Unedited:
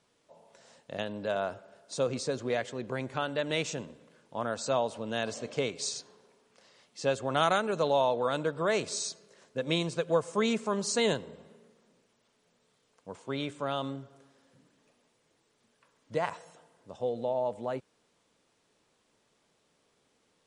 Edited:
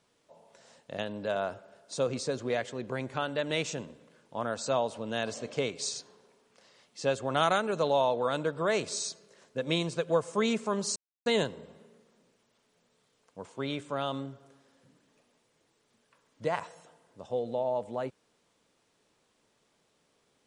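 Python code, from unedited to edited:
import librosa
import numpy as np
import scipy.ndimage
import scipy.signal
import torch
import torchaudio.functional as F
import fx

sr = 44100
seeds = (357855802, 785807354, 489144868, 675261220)

y = fx.edit(x, sr, fx.insert_silence(at_s=10.96, length_s=0.3), tone=tone)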